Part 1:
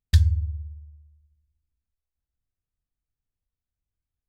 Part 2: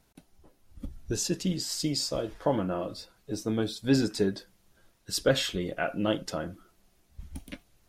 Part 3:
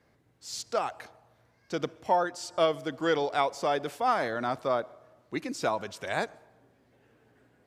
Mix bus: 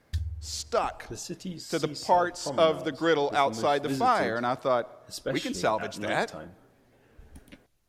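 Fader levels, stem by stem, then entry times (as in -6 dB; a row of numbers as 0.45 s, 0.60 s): -14.0 dB, -8.0 dB, +2.5 dB; 0.00 s, 0.00 s, 0.00 s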